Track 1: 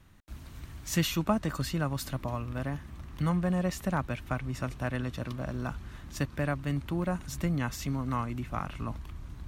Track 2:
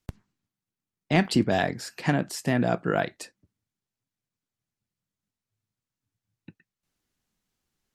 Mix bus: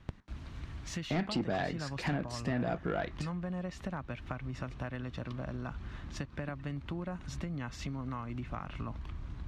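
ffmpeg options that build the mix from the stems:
-filter_complex "[0:a]acompressor=threshold=-35dB:ratio=6,volume=1dB[a];[1:a]asoftclip=type=tanh:threshold=-17.5dB,volume=-1dB[b];[a][b]amix=inputs=2:normalize=0,lowpass=4.5k,acompressor=threshold=-34dB:ratio=2"

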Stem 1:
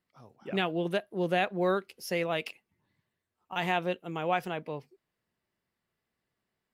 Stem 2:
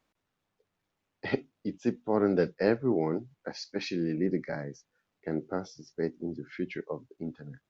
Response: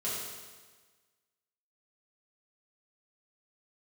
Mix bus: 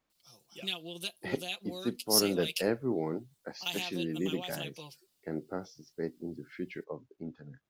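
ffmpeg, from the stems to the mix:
-filter_complex "[0:a]aecho=1:1:5.8:0.74,acompressor=threshold=-30dB:ratio=5,aexciter=amount=15.1:drive=4.8:freq=2.8k,adelay=100,volume=-11.5dB[a];[1:a]volume=-4.5dB[b];[a][b]amix=inputs=2:normalize=0"

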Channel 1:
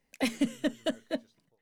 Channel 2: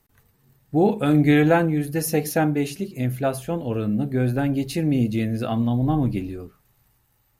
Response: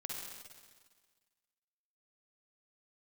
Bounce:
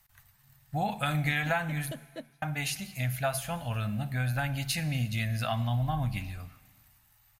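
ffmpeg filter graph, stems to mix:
-filter_complex "[0:a]acompressor=threshold=-31dB:ratio=6,adelay=1050,volume=-5.5dB[a];[1:a]firequalizer=gain_entry='entry(110,0);entry(380,-28);entry(640,-1);entry(1700,5)':delay=0.05:min_phase=1,acompressor=threshold=-23dB:ratio=6,volume=-3dB,asplit=3[b][c][d];[b]atrim=end=1.92,asetpts=PTS-STARTPTS,afade=t=out:st=1.916:d=0.004:c=hsin[e];[c]atrim=start=1.92:end=2.42,asetpts=PTS-STARTPTS,volume=0[f];[d]atrim=start=2.42,asetpts=PTS-STARTPTS,afade=t=in:d=0.004:c=hsin[g];[e][f][g]concat=n=3:v=0:a=1,asplit=3[h][i][j];[i]volume=-12.5dB[k];[j]apad=whole_len=117623[l];[a][l]sidechaincompress=threshold=-36dB:ratio=8:attack=16:release=160[m];[2:a]atrim=start_sample=2205[n];[k][n]afir=irnorm=-1:irlink=0[o];[m][h][o]amix=inputs=3:normalize=0"

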